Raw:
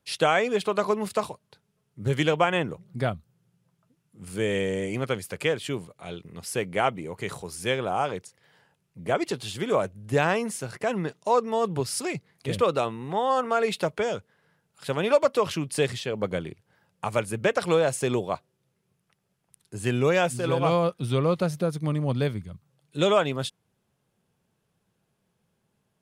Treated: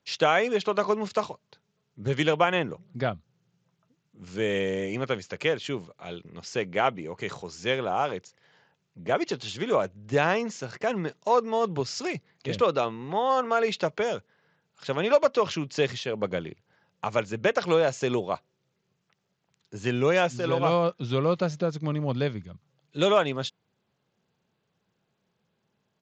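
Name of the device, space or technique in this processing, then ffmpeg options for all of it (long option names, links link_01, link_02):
Bluetooth headset: -af "highpass=frequency=140:poles=1,aresample=16000,aresample=44100" -ar 16000 -c:a sbc -b:a 64k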